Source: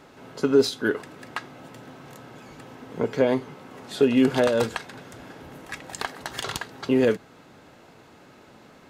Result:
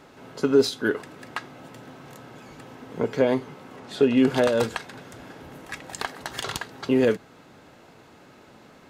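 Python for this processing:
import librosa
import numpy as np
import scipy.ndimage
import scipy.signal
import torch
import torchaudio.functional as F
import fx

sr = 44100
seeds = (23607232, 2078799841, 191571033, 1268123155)

y = fx.high_shelf(x, sr, hz=8300.0, db=-10.0, at=(3.76, 4.27))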